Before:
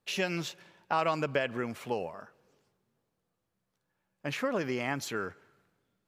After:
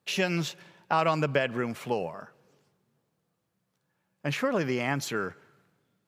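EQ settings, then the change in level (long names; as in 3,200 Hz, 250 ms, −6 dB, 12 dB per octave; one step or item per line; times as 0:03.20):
high-pass filter 88 Hz
parametric band 150 Hz +5.5 dB 0.56 octaves
+3.5 dB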